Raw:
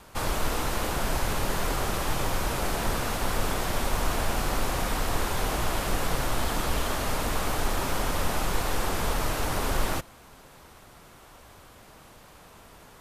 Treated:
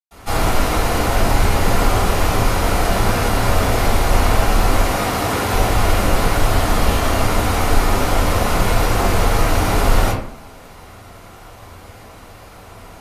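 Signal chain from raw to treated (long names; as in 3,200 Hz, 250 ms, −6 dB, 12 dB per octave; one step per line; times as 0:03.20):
0:04.73–0:05.41: high-pass filter 100 Hz
convolution reverb RT60 0.55 s, pre-delay 109 ms, DRR −60 dB
level +1.5 dB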